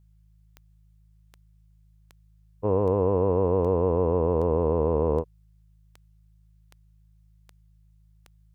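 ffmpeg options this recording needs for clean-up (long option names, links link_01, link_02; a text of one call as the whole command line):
ffmpeg -i in.wav -af "adeclick=threshold=4,bandreject=frequency=53:width_type=h:width=4,bandreject=frequency=106:width_type=h:width=4,bandreject=frequency=159:width_type=h:width=4" out.wav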